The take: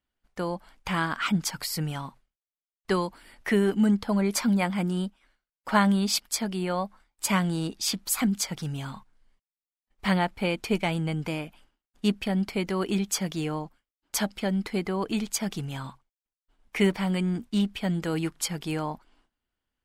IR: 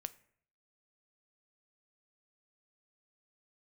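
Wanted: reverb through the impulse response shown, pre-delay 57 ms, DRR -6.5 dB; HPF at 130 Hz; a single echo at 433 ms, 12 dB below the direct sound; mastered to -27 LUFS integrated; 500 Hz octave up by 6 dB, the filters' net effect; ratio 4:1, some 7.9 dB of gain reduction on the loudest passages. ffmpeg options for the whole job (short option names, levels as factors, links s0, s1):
-filter_complex "[0:a]highpass=130,equalizer=f=500:t=o:g=8,acompressor=threshold=0.0631:ratio=4,aecho=1:1:433:0.251,asplit=2[s0][s1];[1:a]atrim=start_sample=2205,adelay=57[s2];[s1][s2]afir=irnorm=-1:irlink=0,volume=2.99[s3];[s0][s3]amix=inputs=2:normalize=0,volume=0.596"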